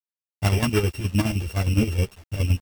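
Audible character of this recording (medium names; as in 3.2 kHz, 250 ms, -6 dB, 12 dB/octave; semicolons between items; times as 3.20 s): a buzz of ramps at a fixed pitch in blocks of 16 samples; chopped level 9.6 Hz, depth 65%, duty 55%; a quantiser's noise floor 8-bit, dither none; a shimmering, thickened sound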